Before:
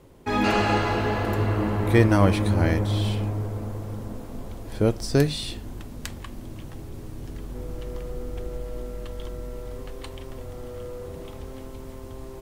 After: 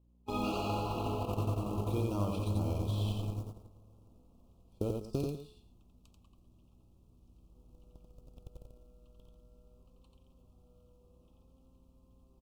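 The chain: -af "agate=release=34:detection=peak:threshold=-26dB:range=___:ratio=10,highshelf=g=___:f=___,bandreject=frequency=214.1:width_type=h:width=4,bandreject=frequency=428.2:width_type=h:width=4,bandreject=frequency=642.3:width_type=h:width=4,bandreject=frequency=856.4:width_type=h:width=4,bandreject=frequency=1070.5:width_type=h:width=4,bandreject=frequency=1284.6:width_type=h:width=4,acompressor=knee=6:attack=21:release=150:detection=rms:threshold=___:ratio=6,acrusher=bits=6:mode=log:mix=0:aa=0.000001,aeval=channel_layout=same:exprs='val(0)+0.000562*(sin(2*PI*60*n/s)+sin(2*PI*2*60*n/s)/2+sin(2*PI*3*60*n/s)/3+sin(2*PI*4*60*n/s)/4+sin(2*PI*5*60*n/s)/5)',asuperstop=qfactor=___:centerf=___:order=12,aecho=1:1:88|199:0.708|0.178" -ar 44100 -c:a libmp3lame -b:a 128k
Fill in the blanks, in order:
-30dB, -4, 5500, -33dB, 1.6, 1800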